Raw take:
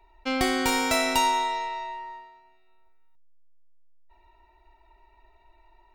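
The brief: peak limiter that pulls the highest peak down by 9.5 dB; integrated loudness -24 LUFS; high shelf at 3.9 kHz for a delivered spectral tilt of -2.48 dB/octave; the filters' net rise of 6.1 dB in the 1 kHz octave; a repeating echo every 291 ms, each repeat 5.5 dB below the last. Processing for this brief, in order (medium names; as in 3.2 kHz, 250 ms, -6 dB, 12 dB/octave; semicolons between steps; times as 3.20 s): peaking EQ 1 kHz +7 dB; treble shelf 3.9 kHz -5 dB; peak limiter -19 dBFS; feedback delay 291 ms, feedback 53%, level -5.5 dB; trim +3.5 dB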